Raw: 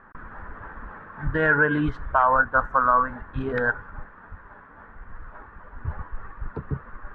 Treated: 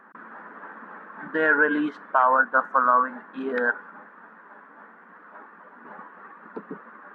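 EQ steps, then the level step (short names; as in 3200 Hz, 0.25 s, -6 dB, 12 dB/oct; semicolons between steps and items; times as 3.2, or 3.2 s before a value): brick-wall FIR high-pass 180 Hz; 0.0 dB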